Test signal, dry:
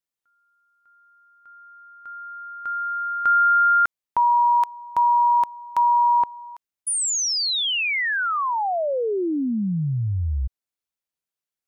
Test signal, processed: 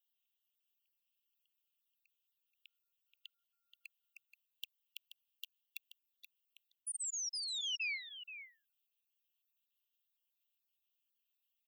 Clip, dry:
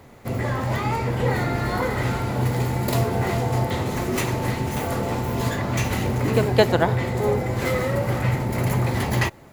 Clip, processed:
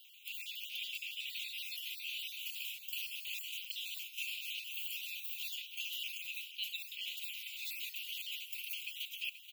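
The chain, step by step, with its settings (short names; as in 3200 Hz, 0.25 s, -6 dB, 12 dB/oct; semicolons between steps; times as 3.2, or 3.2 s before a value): random spectral dropouts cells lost 32%; steep high-pass 2600 Hz 96 dB/oct; band shelf 6800 Hz -15 dB; reverse; compressor 10:1, threshold -48 dBFS; reverse; echo 0.479 s -11.5 dB; gain +9.5 dB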